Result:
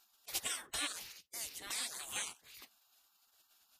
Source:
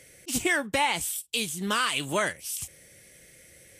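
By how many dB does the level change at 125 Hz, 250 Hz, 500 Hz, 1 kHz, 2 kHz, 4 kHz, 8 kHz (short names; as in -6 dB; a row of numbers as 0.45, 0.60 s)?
-25.5, -25.0, -24.5, -21.0, -17.5, -11.0, -8.5 dB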